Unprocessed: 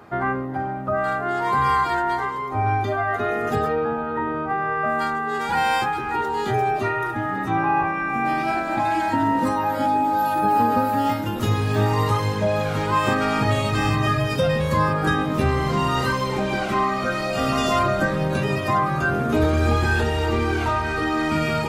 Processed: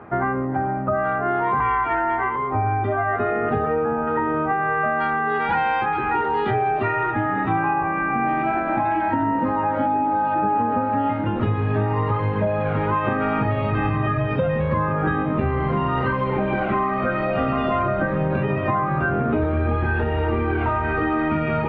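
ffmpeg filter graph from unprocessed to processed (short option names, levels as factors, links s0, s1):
-filter_complex "[0:a]asettb=1/sr,asplit=3[s0][s1][s2];[s0]atrim=end=1.604[s3];[s1]atrim=start=1.6:end=2.36,asetpts=PTS-STARTPTS,afade=t=in:d=0.004:c=qsin,afade=t=out:st=0.756:d=0.004:c=qsin,lowpass=f=2600:t=q:w=2.2,equalizer=f=170:t=o:w=0.3:g=-12.5,afreqshift=-20[s4];[s2]atrim=start=2.356[s5];[s3][s4]acrossfade=d=0.004:c1=hsin:c2=qsin[s6];[s6][s5]acrossfade=d=0.004:c1=qsin:c2=hsin,asettb=1/sr,asplit=3[s7][s8][s9];[s7]atrim=end=4.074[s10];[s8]atrim=start=4.07:end=7.74,asetpts=PTS-STARTPTS,afade=t=in:d=0.004:c=qsin,afade=t=out:st=3.666:d=0.004:c=qsin,lowpass=9100,highshelf=f=2700:g=12,asplit=2[s11][s12];[s12]adelay=19,volume=0.211[s13];[s11][s13]amix=inputs=2:normalize=0,atrim=end_sample=161847[s14];[s9]atrim=start=7.736[s15];[s10][s14]acrossfade=d=0.004:c1=hsin:c2=qsin[s16];[s16][s15]acrossfade=d=0.004:c1=qsin:c2=hsin,lowpass=f=2700:w=0.5412,lowpass=f=2700:w=1.3066,aemphasis=mode=reproduction:type=75kf,acompressor=threshold=0.0708:ratio=6,volume=1.78"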